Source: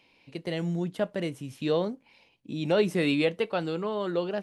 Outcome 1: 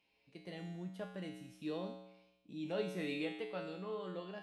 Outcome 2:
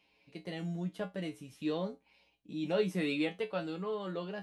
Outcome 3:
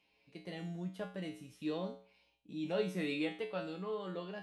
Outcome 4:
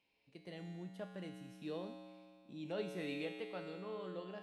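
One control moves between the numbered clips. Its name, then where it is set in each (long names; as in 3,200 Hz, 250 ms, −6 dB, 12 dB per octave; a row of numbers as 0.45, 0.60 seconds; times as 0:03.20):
tuned comb filter, decay: 0.93, 0.19, 0.44, 2.2 seconds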